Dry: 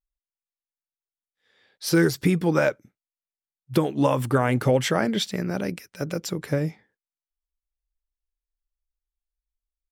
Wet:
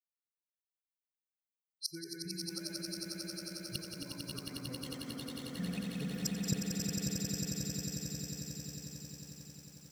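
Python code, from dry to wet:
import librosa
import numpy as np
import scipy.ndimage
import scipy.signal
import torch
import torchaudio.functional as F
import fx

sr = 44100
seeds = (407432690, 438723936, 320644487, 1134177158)

y = fx.bin_expand(x, sr, power=3.0)
y = fx.peak_eq(y, sr, hz=720.0, db=-10.5, octaves=1.8)
y = fx.echo_multitap(y, sr, ms=(65, 87, 137, 176, 200, 222), db=(-17.5, -5.5, -16.5, -5.5, -19.0, -4.0))
y = fx.rotary(y, sr, hz=5.0)
y = fx.gate_flip(y, sr, shuts_db=-33.0, range_db=-31)
y = fx.echo_swell(y, sr, ms=90, loudest=8, wet_db=-5.5)
y = fx.echo_crushed(y, sr, ms=554, feedback_pct=55, bits=11, wet_db=-7.5)
y = F.gain(torch.from_numpy(y), 11.5).numpy()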